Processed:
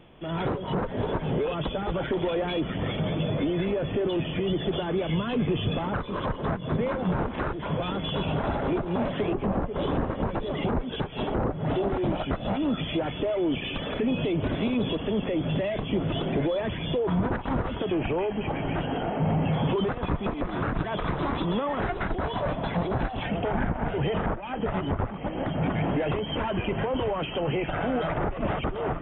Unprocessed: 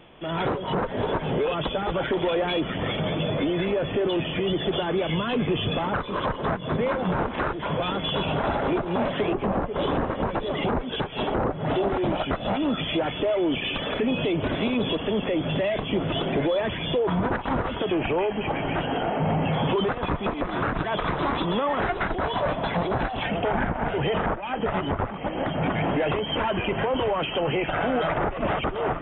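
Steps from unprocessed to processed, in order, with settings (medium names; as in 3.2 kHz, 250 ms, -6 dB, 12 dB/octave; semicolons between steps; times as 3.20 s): bass shelf 330 Hz +7.5 dB; trim -5.5 dB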